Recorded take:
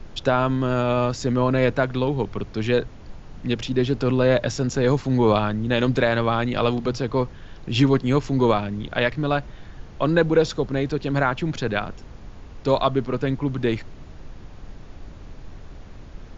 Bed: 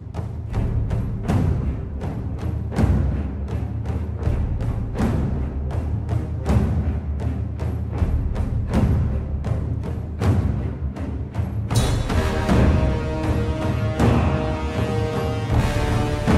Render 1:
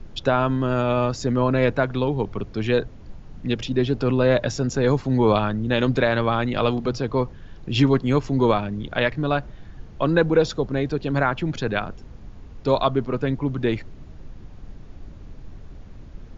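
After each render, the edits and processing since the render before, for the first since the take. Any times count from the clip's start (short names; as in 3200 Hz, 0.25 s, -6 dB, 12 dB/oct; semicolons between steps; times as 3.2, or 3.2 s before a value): denoiser 6 dB, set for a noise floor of -42 dBFS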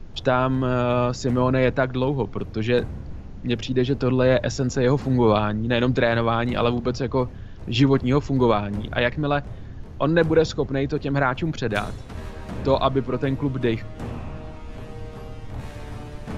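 add bed -15.5 dB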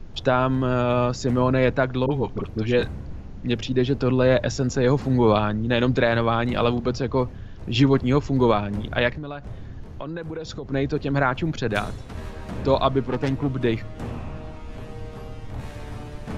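2.06–3.06 dispersion highs, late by 47 ms, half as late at 730 Hz; 9.1–10.72 compressor 10:1, threshold -28 dBFS; 13.08–13.5 self-modulated delay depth 0.31 ms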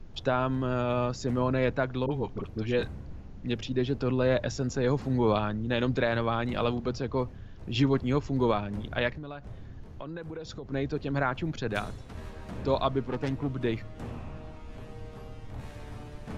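gain -7 dB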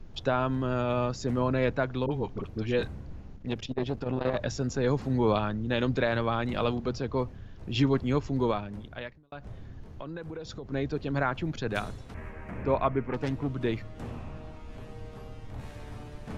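3.33–4.41 core saturation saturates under 480 Hz; 8.29–9.32 fade out; 12.14–13.14 resonant high shelf 2900 Hz -9.5 dB, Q 3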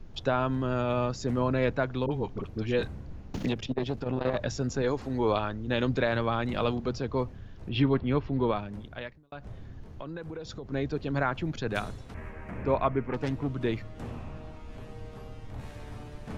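3.34–4.01 three-band squash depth 100%; 4.82–5.68 bell 160 Hz -13 dB 0.7 oct; 7.69–8.56 LPF 3800 Hz 24 dB/oct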